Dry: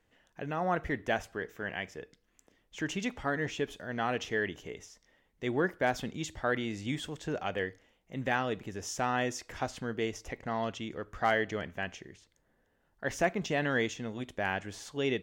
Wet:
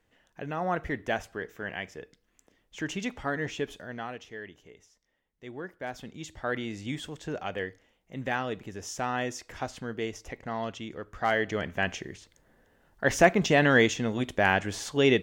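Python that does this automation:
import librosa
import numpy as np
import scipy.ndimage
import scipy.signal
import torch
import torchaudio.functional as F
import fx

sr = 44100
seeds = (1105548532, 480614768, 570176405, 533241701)

y = fx.gain(x, sr, db=fx.line((3.79, 1.0), (4.22, -10.0), (5.67, -10.0), (6.57, 0.0), (11.19, 0.0), (11.91, 9.0)))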